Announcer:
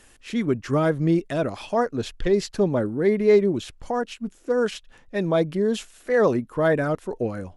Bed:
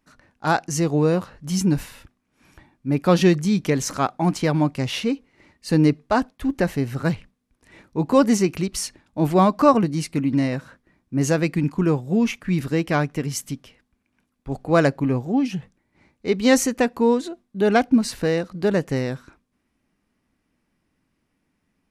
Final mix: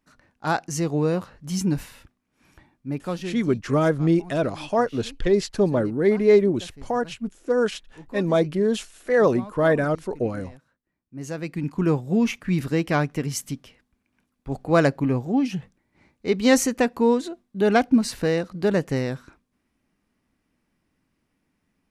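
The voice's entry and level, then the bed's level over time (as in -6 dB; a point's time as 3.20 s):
3.00 s, +1.0 dB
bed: 2.78 s -3.5 dB
3.51 s -22.5 dB
10.76 s -22.5 dB
11.89 s -1 dB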